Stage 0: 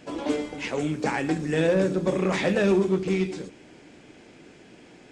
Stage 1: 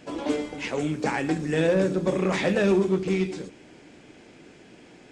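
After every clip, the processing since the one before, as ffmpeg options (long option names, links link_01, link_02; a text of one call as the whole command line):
ffmpeg -i in.wav -af anull out.wav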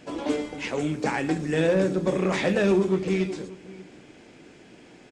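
ffmpeg -i in.wav -filter_complex "[0:a]asplit=2[link_01][link_02];[link_02]adelay=583.1,volume=-19dB,highshelf=frequency=4000:gain=-13.1[link_03];[link_01][link_03]amix=inputs=2:normalize=0" out.wav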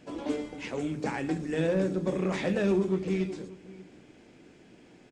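ffmpeg -i in.wav -af "lowshelf=frequency=330:gain=5.5,bandreject=frequency=50:width_type=h:width=6,bandreject=frequency=100:width_type=h:width=6,bandreject=frequency=150:width_type=h:width=6,volume=-7.5dB" out.wav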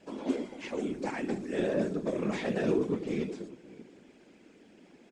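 ffmpeg -i in.wav -af "afftfilt=real='hypot(re,im)*cos(2*PI*random(0))':imag='hypot(re,im)*sin(2*PI*random(1))':win_size=512:overlap=0.75,lowshelf=frequency=160:width_type=q:width=1.5:gain=-8,volume=3dB" out.wav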